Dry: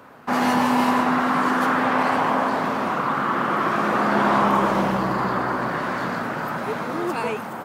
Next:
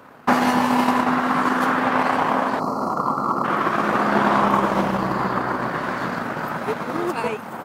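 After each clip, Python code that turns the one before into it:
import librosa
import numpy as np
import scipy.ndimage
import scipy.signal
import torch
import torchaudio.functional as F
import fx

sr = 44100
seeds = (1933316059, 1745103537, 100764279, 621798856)

y = fx.spec_erase(x, sr, start_s=2.6, length_s=0.84, low_hz=1400.0, high_hz=4000.0)
y = fx.transient(y, sr, attack_db=9, sustain_db=-6)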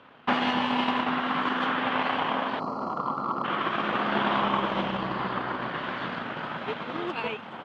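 y = fx.lowpass_res(x, sr, hz=3200.0, q=4.3)
y = y * 10.0 ** (-8.5 / 20.0)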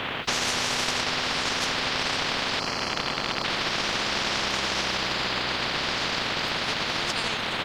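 y = fx.spectral_comp(x, sr, ratio=10.0)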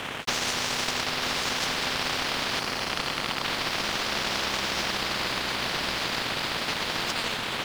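y = np.sign(x) * np.maximum(np.abs(x) - 10.0 ** (-37.5 / 20.0), 0.0)
y = y + 10.0 ** (-7.5 / 20.0) * np.pad(y, (int(941 * sr / 1000.0), 0))[:len(y)]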